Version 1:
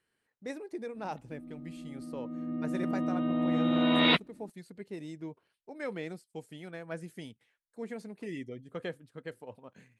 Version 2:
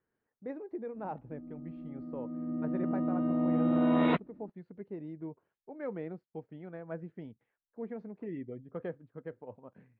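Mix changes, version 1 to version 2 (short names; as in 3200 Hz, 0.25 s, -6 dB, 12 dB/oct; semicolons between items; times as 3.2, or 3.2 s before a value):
speech: add air absorption 98 m; master: add LPF 1200 Hz 12 dB/oct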